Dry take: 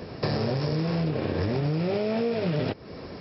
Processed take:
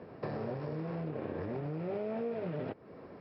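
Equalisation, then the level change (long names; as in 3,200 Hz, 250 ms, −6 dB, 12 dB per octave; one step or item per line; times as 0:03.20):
high-pass filter 200 Hz 6 dB per octave
low-pass filter 1,700 Hz 12 dB per octave
−8.5 dB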